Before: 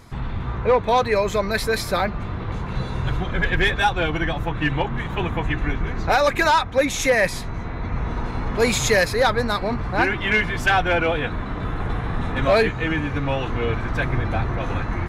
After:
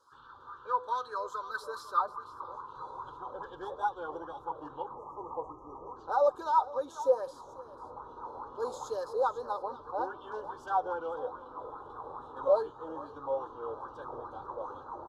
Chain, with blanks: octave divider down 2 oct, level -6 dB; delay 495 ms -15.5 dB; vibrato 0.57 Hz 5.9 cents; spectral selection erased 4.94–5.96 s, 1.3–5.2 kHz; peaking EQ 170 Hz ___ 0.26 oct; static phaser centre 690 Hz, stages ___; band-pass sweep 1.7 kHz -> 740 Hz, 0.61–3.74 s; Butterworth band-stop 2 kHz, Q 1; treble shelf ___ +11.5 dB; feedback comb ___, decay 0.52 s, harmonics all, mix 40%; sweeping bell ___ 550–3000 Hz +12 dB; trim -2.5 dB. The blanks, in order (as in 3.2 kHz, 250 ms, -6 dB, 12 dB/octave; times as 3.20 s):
+12.5 dB, 6, 3.4 kHz, 250 Hz, 2.4 Hz